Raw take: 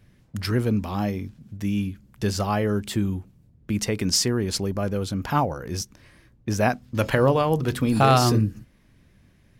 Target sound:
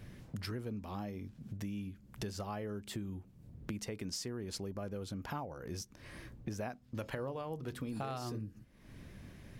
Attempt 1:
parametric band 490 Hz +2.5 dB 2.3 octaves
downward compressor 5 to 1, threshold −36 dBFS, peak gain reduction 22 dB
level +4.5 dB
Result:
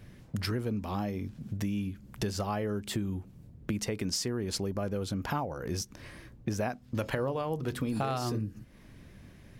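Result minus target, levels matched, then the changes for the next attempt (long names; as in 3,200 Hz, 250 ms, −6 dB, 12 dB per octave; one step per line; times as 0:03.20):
downward compressor: peak gain reduction −8.5 dB
change: downward compressor 5 to 1, threshold −46.5 dBFS, peak gain reduction 30 dB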